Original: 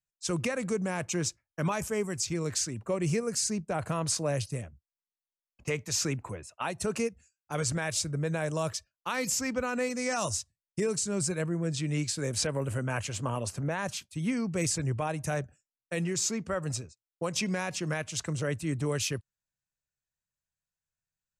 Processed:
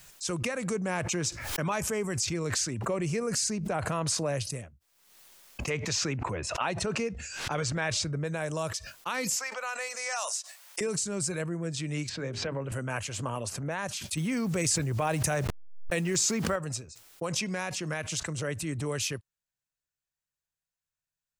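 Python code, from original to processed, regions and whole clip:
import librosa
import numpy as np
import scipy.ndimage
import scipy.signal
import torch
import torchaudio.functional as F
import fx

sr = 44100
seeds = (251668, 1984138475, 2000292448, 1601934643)

y = fx.chain(x, sr, fx.high_shelf(hz=7200.0, db=-5.5),
    fx.env_flatten(amount_pct=50), at=(0.75, 4.43))
y = fx.chain(y, sr, fx.lowpass(hz=4900.0, slope=12),
    fx.env_flatten(amount_pct=70), at=(5.7, 8.24))
y = fx.chain(y, sr, fx.highpass(hz=630.0, slope=24),
    fx.band_squash(depth_pct=40), at=(9.36, 10.81))
y = fx.chain(y, sr, fx.air_absorb(metres=200.0),
    fx.hum_notches(base_hz=50, count=8),
    fx.band_squash(depth_pct=40), at=(12.09, 12.72))
y = fx.chain(y, sr, fx.delta_hold(step_db=-53.0),
    fx.env_flatten(amount_pct=100), at=(14.17, 16.56))
y = fx.low_shelf(y, sr, hz=430.0, db=-4.0)
y = fx.pre_swell(y, sr, db_per_s=52.0)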